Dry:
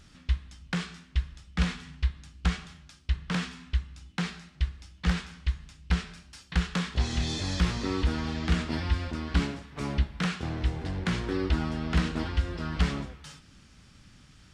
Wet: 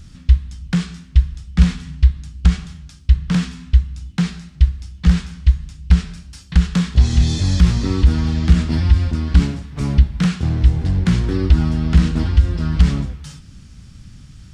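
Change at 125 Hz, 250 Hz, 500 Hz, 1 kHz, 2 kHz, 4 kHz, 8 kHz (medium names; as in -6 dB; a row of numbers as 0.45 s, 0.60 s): +15.0 dB, +11.5 dB, +5.0 dB, +3.0 dB, +3.0 dB, +5.5 dB, +8.0 dB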